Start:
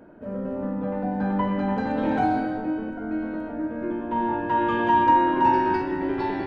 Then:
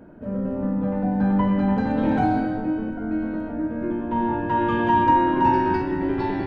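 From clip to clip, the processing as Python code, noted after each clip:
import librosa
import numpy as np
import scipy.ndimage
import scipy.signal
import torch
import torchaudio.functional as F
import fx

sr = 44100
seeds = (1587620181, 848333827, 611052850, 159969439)

y = fx.bass_treble(x, sr, bass_db=8, treble_db=0)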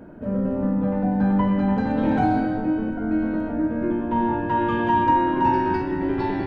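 y = fx.rider(x, sr, range_db=4, speed_s=2.0)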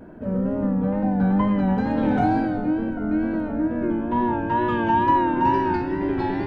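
y = fx.vibrato(x, sr, rate_hz=2.2, depth_cents=65.0)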